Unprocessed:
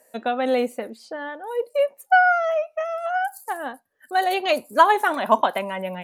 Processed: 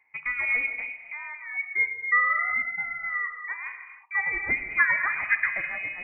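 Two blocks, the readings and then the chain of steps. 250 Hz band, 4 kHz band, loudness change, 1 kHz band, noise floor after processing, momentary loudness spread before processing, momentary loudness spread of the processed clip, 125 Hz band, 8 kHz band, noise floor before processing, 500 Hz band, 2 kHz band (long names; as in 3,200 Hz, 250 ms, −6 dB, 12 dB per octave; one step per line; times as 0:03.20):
−19.5 dB, below −25 dB, −3.5 dB, −14.0 dB, −48 dBFS, 15 LU, 13 LU, can't be measured, below −35 dB, −62 dBFS, −27.0 dB, +2.5 dB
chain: tilt shelving filter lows +3.5 dB, about 770 Hz
reverb whose tail is shaped and stops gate 330 ms flat, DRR 6.5 dB
voice inversion scrambler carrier 2,700 Hz
level −6.5 dB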